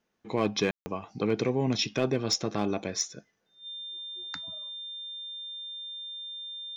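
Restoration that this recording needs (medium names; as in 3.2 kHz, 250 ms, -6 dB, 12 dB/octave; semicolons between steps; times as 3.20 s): clip repair -16.5 dBFS; band-stop 3.6 kHz, Q 30; room tone fill 0.71–0.86 s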